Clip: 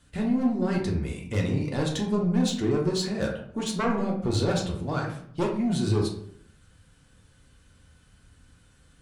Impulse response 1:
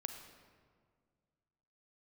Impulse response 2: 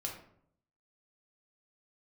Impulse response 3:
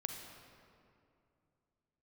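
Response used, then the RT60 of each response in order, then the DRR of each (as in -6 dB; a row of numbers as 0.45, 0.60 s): 2; 1.9, 0.65, 2.6 s; 6.0, -1.0, 3.5 dB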